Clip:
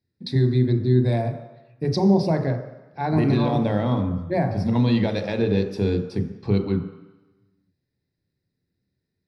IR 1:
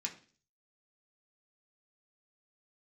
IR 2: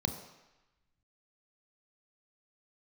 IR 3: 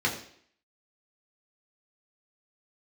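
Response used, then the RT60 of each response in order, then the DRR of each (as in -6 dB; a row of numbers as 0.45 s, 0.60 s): 2; 0.40 s, 1.0 s, 0.60 s; -1.0 dB, 6.0 dB, -3.0 dB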